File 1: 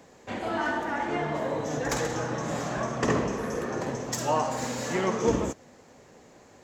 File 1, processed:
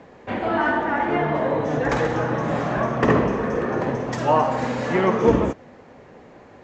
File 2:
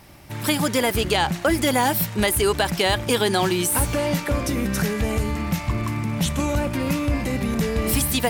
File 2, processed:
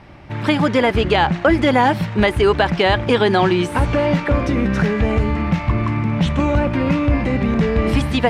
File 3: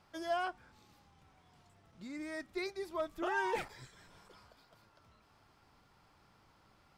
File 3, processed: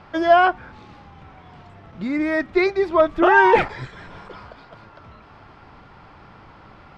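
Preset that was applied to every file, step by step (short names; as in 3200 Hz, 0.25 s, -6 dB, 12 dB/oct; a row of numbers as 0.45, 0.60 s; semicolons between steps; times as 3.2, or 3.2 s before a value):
LPF 2600 Hz 12 dB/oct; normalise peaks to -3 dBFS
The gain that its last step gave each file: +7.5, +6.0, +21.0 dB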